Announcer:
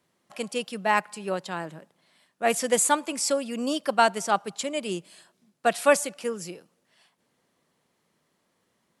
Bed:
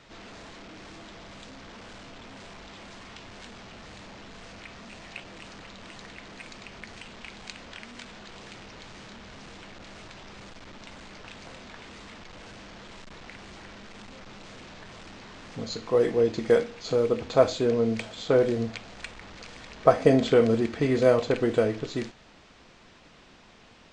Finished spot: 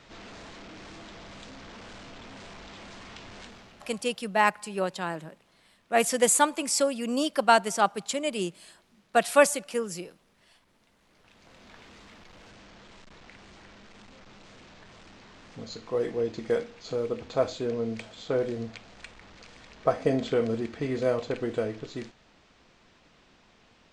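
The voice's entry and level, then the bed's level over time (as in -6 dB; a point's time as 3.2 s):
3.50 s, +0.5 dB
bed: 3.41 s 0 dB
4.35 s -22.5 dB
10.95 s -22.5 dB
11.72 s -6 dB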